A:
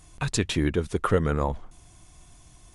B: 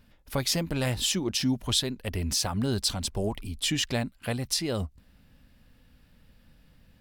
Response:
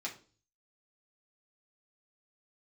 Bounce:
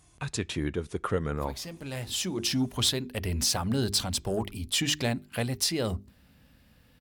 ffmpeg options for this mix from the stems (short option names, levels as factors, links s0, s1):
-filter_complex "[0:a]volume=0.473,asplit=3[s0][s1][s2];[s1]volume=0.0891[s3];[1:a]highshelf=f=9500:g=2.5,bandreject=f=50:t=h:w=6,bandreject=f=100:t=h:w=6,bandreject=f=150:t=h:w=6,bandreject=f=200:t=h:w=6,bandreject=f=250:t=h:w=6,bandreject=f=300:t=h:w=6,bandreject=f=350:t=h:w=6,bandreject=f=400:t=h:w=6,asoftclip=type=tanh:threshold=0.112,adelay=1100,volume=1.19,asplit=2[s4][s5];[s5]volume=0.0708[s6];[s2]apad=whole_len=357329[s7];[s4][s7]sidechaincompress=threshold=0.01:ratio=8:attack=5.9:release=935[s8];[2:a]atrim=start_sample=2205[s9];[s3][s6]amix=inputs=2:normalize=0[s10];[s10][s9]afir=irnorm=-1:irlink=0[s11];[s0][s8][s11]amix=inputs=3:normalize=0,highpass=54"